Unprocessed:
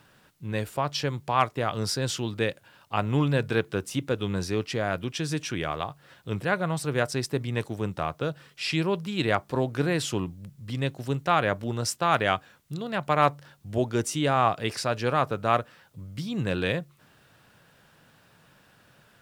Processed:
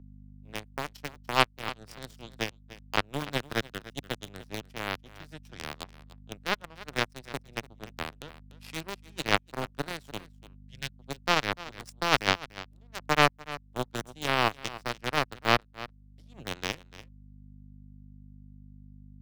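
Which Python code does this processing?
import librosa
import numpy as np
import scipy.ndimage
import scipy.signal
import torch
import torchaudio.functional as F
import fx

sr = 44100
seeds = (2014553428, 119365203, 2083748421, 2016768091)

p1 = fx.power_curve(x, sr, exponent=3.0)
p2 = fx.add_hum(p1, sr, base_hz=50, snr_db=21)
p3 = fx.quant_dither(p2, sr, seeds[0], bits=6, dither='none')
p4 = p2 + (p3 * librosa.db_to_amplitude(-4.0))
p5 = fx.spec_box(p4, sr, start_s=10.69, length_s=0.24, low_hz=220.0, high_hz=1400.0, gain_db=-11)
p6 = p5 + fx.echo_single(p5, sr, ms=293, db=-19.5, dry=0)
p7 = fx.band_squash(p6, sr, depth_pct=40)
y = p7 * librosa.db_to_amplitude(5.0)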